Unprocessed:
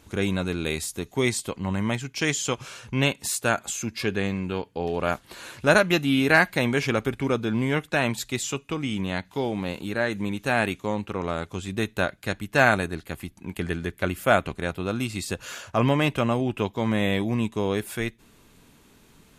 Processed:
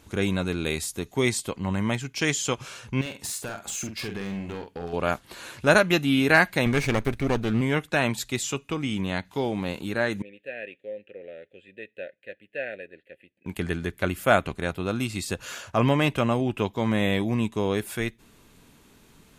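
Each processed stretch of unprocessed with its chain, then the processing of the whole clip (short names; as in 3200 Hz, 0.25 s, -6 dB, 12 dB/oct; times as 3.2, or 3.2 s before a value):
3.01–4.93 compressor 16:1, threshold -27 dBFS + overloaded stage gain 28 dB + doubler 46 ms -7 dB
6.66–7.61 minimum comb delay 0.47 ms + low shelf 110 Hz +7 dB + mismatched tape noise reduction encoder only
10.22–13.46 vowel filter e + fixed phaser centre 2500 Hz, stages 4
whole clip: dry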